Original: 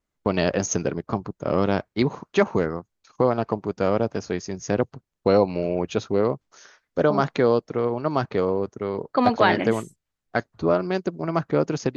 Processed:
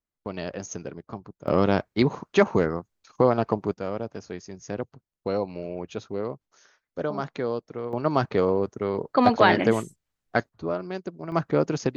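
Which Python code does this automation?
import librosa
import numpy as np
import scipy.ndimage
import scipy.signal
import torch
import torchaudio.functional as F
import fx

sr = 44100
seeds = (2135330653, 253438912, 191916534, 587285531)

y = fx.gain(x, sr, db=fx.steps((0.0, -11.0), (1.48, 0.5), (3.74, -9.0), (7.93, 0.5), (10.49, -8.0), (11.32, -1.0)))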